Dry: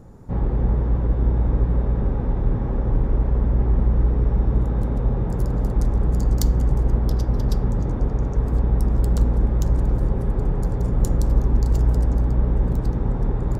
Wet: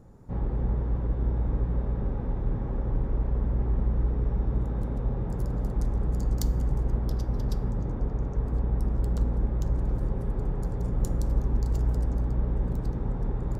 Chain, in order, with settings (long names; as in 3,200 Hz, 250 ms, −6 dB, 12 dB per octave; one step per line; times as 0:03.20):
0:07.70–0:09.86: high-shelf EQ 4,900 Hz −6 dB
convolution reverb RT60 1.7 s, pre-delay 7 ms, DRR 17.5 dB
level −7.5 dB